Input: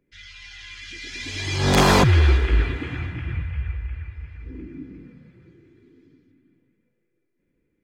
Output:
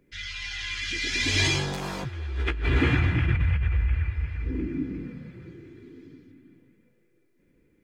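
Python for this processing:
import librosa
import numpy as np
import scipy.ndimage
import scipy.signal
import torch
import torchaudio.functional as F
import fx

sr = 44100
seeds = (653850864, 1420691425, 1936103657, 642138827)

y = fx.over_compress(x, sr, threshold_db=-28.0, ratio=-1.0)
y = fx.doubler(y, sr, ms=15.0, db=-4.0, at=(1.43, 2.95))
y = F.gain(torch.from_numpy(y), 1.5).numpy()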